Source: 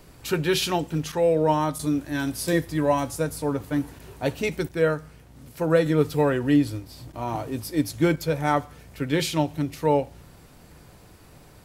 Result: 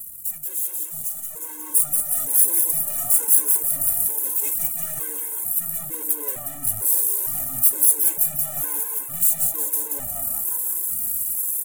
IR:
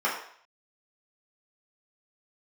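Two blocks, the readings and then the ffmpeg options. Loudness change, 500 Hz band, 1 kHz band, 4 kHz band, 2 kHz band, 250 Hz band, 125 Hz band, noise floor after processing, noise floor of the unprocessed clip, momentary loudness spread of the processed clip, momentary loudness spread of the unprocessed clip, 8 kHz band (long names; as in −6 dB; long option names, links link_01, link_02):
+5.5 dB, −19.0 dB, −13.5 dB, below −10 dB, −13.0 dB, −20.0 dB, −16.0 dB, −35 dBFS, −51 dBFS, 11 LU, 9 LU, +18.0 dB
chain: -filter_complex "[0:a]flanger=delay=9:depth=6.1:regen=-68:speed=0.18:shape=sinusoidal,aeval=exprs='max(val(0),0)':channel_layout=same,highpass=42,aphaser=in_gain=1:out_gain=1:delay=2.1:decay=0.42:speed=1.2:type=triangular,highshelf=frequency=5800:gain=11,areverse,acompressor=threshold=-39dB:ratio=16,areverse,asplit=8[link_01][link_02][link_03][link_04][link_05][link_06][link_07][link_08];[link_02]adelay=180,afreqshift=150,volume=-6dB[link_09];[link_03]adelay=360,afreqshift=300,volume=-10.9dB[link_10];[link_04]adelay=540,afreqshift=450,volume=-15.8dB[link_11];[link_05]adelay=720,afreqshift=600,volume=-20.6dB[link_12];[link_06]adelay=900,afreqshift=750,volume=-25.5dB[link_13];[link_07]adelay=1080,afreqshift=900,volume=-30.4dB[link_14];[link_08]adelay=1260,afreqshift=1050,volume=-35.3dB[link_15];[link_01][link_09][link_10][link_11][link_12][link_13][link_14][link_15]amix=inputs=8:normalize=0,aeval=exprs='(tanh(178*val(0)+0.6)-tanh(0.6))/178':channel_layout=same,dynaudnorm=framelen=330:gausssize=9:maxgain=10.5dB,aexciter=amount=11.2:drive=9.9:freq=7500,afftfilt=real='re*gt(sin(2*PI*1.1*pts/sr)*(1-2*mod(floor(b*sr/1024/280),2)),0)':imag='im*gt(sin(2*PI*1.1*pts/sr)*(1-2*mod(floor(b*sr/1024/280),2)),0)':win_size=1024:overlap=0.75,volume=2dB"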